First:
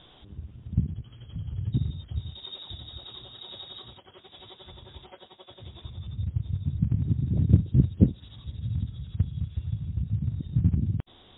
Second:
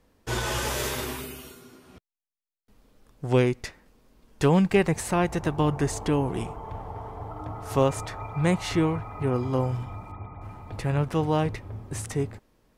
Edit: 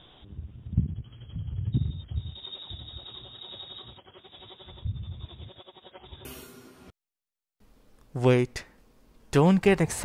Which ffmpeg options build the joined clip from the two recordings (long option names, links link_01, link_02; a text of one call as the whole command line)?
ffmpeg -i cue0.wav -i cue1.wav -filter_complex "[0:a]apad=whole_dur=10.04,atrim=end=10.04,asplit=2[link_01][link_02];[link_01]atrim=end=4.852[link_03];[link_02]atrim=start=4.848:end=6.252,asetpts=PTS-STARTPTS,areverse[link_04];[1:a]atrim=start=1.328:end=5.12[link_05];[link_03][link_04]acrossfade=duration=0.004:curve1=hsin:curve2=hsin[link_06];[link_06][link_05]acrossfade=duration=0.004:curve1=hsin:curve2=hsin" out.wav